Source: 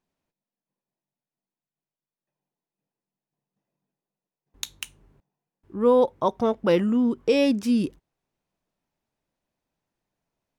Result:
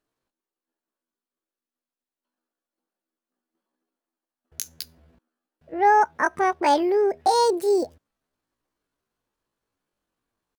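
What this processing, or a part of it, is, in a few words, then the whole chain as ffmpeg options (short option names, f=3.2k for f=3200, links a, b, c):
chipmunk voice: -af "asetrate=74167,aresample=44100,atempo=0.594604,volume=1dB"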